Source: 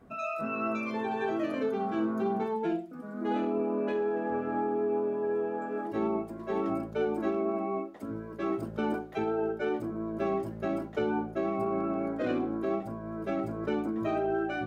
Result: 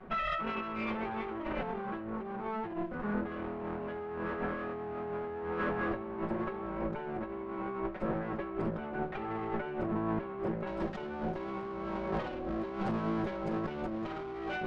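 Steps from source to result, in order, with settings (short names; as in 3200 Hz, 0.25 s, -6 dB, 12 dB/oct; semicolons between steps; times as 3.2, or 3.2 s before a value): minimum comb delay 5.4 ms; Chebyshev low-pass 2200 Hz, order 2, from 10.66 s 4400 Hz; negative-ratio compressor -40 dBFS, ratio -1; gain +3.5 dB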